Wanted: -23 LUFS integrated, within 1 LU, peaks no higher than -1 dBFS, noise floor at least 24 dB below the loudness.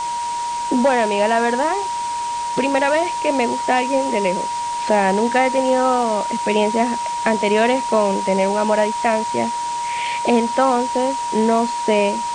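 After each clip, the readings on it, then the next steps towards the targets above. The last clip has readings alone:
steady tone 950 Hz; tone level -21 dBFS; noise floor -24 dBFS; noise floor target -43 dBFS; loudness -18.5 LUFS; peak level -3.0 dBFS; loudness target -23.0 LUFS
-> band-stop 950 Hz, Q 30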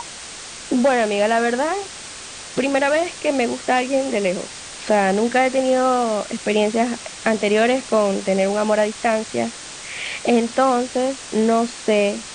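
steady tone not found; noise floor -36 dBFS; noise floor target -44 dBFS
-> noise reduction 8 dB, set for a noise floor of -36 dBFS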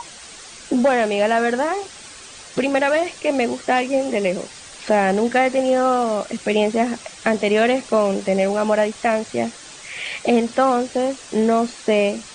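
noise floor -40 dBFS; noise floor target -44 dBFS
-> noise reduction 6 dB, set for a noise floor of -40 dBFS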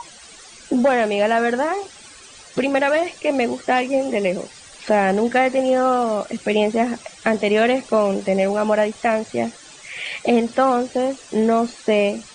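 noise floor -43 dBFS; noise floor target -44 dBFS
-> noise reduction 6 dB, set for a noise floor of -43 dBFS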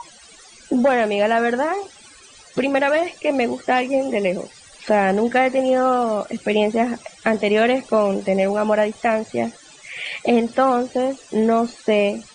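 noise floor -46 dBFS; loudness -20.0 LUFS; peak level -4.0 dBFS; loudness target -23.0 LUFS
-> trim -3 dB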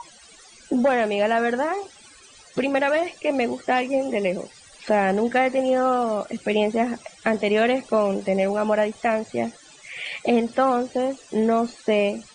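loudness -23.0 LUFS; peak level -7.0 dBFS; noise floor -49 dBFS

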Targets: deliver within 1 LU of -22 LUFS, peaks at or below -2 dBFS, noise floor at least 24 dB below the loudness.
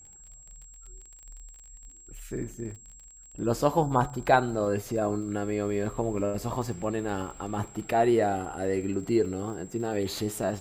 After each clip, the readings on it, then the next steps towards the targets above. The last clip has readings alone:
tick rate 30 per s; steady tone 7.6 kHz; tone level -49 dBFS; loudness -28.5 LUFS; peak level -7.0 dBFS; loudness target -22.0 LUFS
-> de-click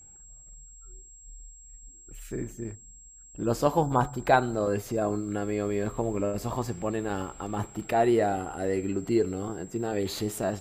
tick rate 0.094 per s; steady tone 7.6 kHz; tone level -49 dBFS
-> band-stop 7.6 kHz, Q 30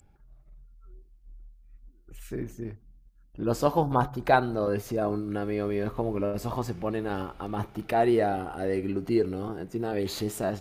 steady tone not found; loudness -28.5 LUFS; peak level -6.5 dBFS; loudness target -22.0 LUFS
-> trim +6.5 dB; peak limiter -2 dBFS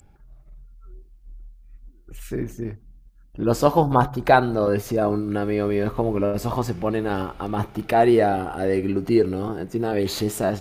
loudness -22.5 LUFS; peak level -2.0 dBFS; noise floor -51 dBFS

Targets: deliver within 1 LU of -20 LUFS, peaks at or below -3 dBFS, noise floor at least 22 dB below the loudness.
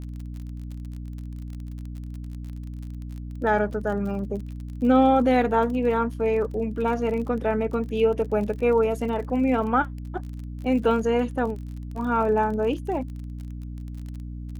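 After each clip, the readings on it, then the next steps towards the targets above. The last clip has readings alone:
tick rate 35 per s; hum 60 Hz; highest harmonic 300 Hz; hum level -32 dBFS; loudness -24.0 LUFS; peak level -8.5 dBFS; loudness target -20.0 LUFS
-> de-click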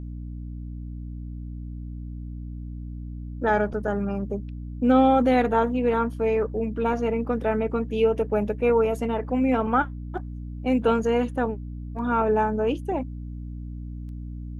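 tick rate 0.069 per s; hum 60 Hz; highest harmonic 300 Hz; hum level -32 dBFS
-> hum notches 60/120/180/240/300 Hz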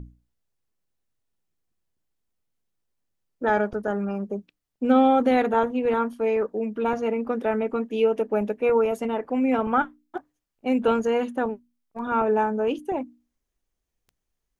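hum not found; loudness -24.0 LUFS; peak level -8.5 dBFS; loudness target -20.0 LUFS
-> trim +4 dB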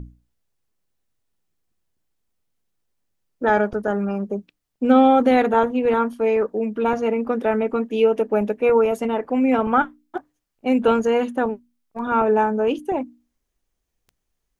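loudness -20.0 LUFS; peak level -4.5 dBFS; noise floor -77 dBFS

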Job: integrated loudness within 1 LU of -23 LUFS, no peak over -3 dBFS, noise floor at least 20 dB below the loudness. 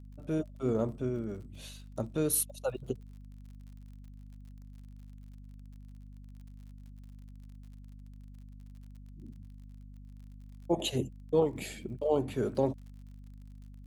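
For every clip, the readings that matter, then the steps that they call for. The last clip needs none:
tick rate 47 per s; hum 50 Hz; highest harmonic 250 Hz; hum level -46 dBFS; loudness -33.0 LUFS; peak level -14.5 dBFS; loudness target -23.0 LUFS
-> de-click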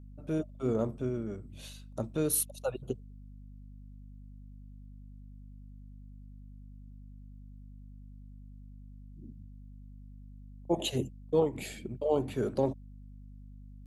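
tick rate 0.072 per s; hum 50 Hz; highest harmonic 250 Hz; hum level -46 dBFS
-> de-hum 50 Hz, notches 5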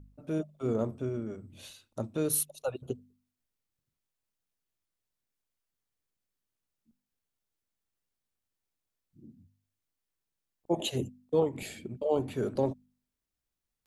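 hum not found; loudness -33.0 LUFS; peak level -14.5 dBFS; loudness target -23.0 LUFS
-> trim +10 dB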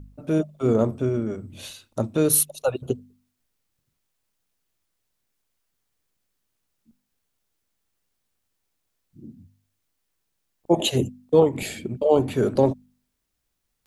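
loudness -23.0 LUFS; peak level -4.5 dBFS; noise floor -77 dBFS

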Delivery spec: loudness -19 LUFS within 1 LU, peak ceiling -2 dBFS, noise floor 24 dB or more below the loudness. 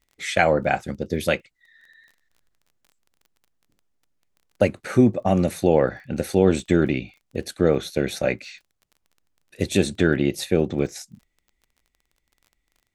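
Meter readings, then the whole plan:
tick rate 21 per s; loudness -22.5 LUFS; peak level -3.5 dBFS; loudness target -19.0 LUFS
-> de-click; trim +3.5 dB; peak limiter -2 dBFS

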